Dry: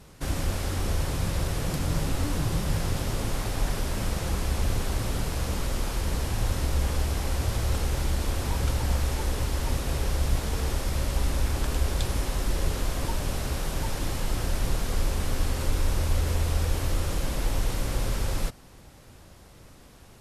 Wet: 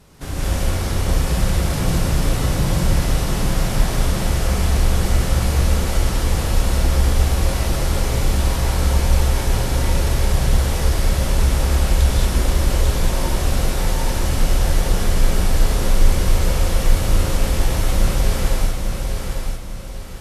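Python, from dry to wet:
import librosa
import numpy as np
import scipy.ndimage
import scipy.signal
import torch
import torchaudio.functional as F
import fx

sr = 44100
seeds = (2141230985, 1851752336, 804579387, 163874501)

p1 = x + fx.echo_feedback(x, sr, ms=848, feedback_pct=37, wet_db=-5, dry=0)
y = fx.rev_gated(p1, sr, seeds[0], gate_ms=250, shape='rising', drr_db=-6.0)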